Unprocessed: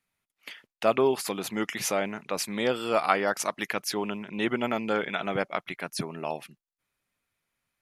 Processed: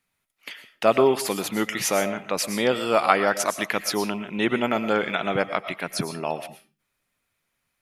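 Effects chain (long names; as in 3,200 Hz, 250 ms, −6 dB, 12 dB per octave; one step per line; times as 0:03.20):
on a send: high-shelf EQ 7,200 Hz +9.5 dB + convolution reverb RT60 0.35 s, pre-delay 75 ms, DRR 11.5 dB
on the sum: level +4.5 dB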